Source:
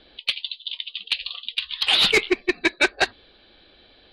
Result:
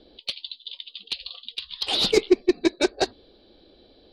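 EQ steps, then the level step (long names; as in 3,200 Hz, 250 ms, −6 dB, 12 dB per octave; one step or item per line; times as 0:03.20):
drawn EQ curve 150 Hz 0 dB, 290 Hz +5 dB, 480 Hz +4 dB, 1,700 Hz −13 dB, 2,600 Hz −12 dB, 5,300 Hz +2 dB, 9,600 Hz −5 dB
0.0 dB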